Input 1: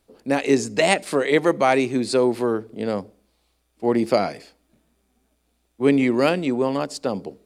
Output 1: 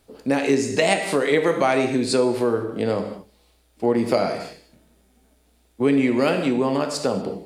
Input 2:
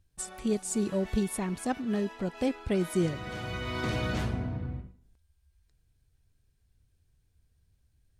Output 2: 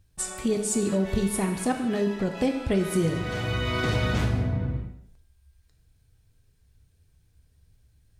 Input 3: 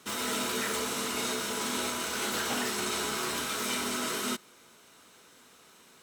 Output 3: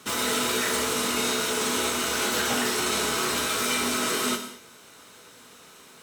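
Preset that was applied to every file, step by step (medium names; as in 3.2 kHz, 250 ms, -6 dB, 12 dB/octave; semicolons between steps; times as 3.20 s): gated-style reverb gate 260 ms falling, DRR 5 dB; compression 2:1, threshold -28 dBFS; trim +6 dB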